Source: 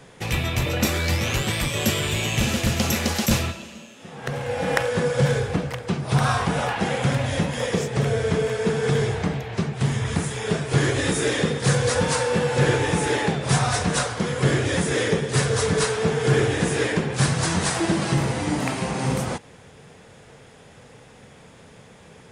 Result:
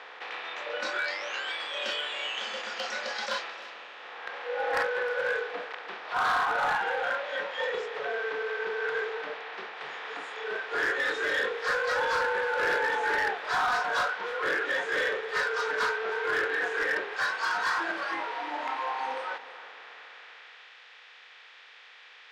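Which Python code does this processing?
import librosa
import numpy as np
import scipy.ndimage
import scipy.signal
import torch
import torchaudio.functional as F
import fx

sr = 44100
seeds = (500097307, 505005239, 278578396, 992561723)

p1 = fx.bin_compress(x, sr, power=0.4)
p2 = scipy.signal.sosfilt(scipy.signal.butter(2, 370.0, 'highpass', fs=sr, output='sos'), p1)
p3 = fx.noise_reduce_blind(p2, sr, reduce_db=16)
p4 = scipy.signal.sosfilt(scipy.signal.butter(4, 3900.0, 'lowpass', fs=sr, output='sos'), p3)
p5 = fx.high_shelf(p4, sr, hz=2300.0, db=-7.0)
p6 = 10.0 ** (-24.0 / 20.0) * np.tanh(p5 / 10.0 ** (-24.0 / 20.0))
p7 = p5 + (p6 * 10.0 ** (-4.5 / 20.0))
p8 = fx.filter_sweep_highpass(p7, sr, from_hz=940.0, to_hz=2300.0, start_s=19.59, end_s=20.76, q=0.73)
p9 = np.clip(10.0 ** (22.5 / 20.0) * p8, -1.0, 1.0) / 10.0 ** (22.5 / 20.0)
p10 = p9 + fx.echo_single(p9, sr, ms=310, db=-17.5, dry=0)
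y = fx.doppler_dist(p10, sr, depth_ms=0.11)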